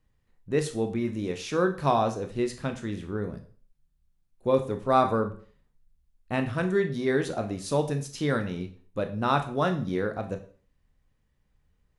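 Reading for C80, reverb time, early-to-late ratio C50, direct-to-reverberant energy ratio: 16.0 dB, 0.45 s, 12.0 dB, 6.0 dB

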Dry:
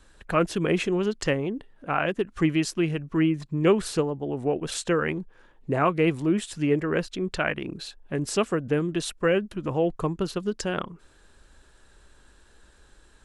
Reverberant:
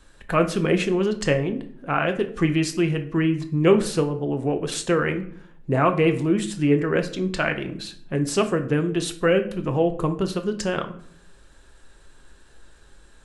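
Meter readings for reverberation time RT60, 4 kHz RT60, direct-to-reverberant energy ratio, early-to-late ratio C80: 0.60 s, 0.40 s, 6.0 dB, 17.0 dB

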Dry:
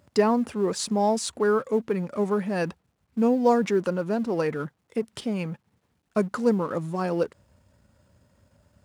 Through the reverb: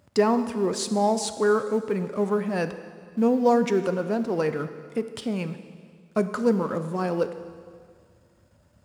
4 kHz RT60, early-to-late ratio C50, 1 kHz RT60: 1.9 s, 11.0 dB, 2.0 s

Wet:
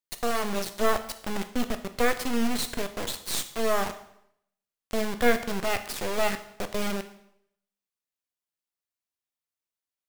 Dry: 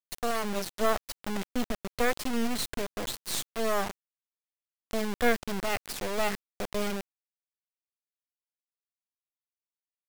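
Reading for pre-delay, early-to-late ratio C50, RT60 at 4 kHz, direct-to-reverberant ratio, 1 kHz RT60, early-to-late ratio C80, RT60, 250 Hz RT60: 6 ms, 12.5 dB, 0.65 s, 8.5 dB, 0.70 s, 15.5 dB, 0.75 s, 0.75 s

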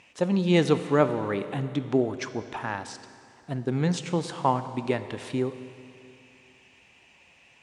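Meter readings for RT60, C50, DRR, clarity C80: 2.6 s, 11.5 dB, 10.5 dB, 12.0 dB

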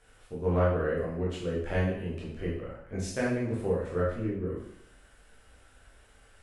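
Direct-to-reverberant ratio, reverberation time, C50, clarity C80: -6.5 dB, 0.70 s, 2.5 dB, 6.0 dB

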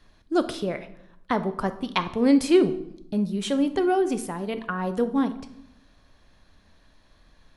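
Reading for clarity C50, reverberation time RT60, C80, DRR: 13.5 dB, 0.75 s, 16.5 dB, 10.0 dB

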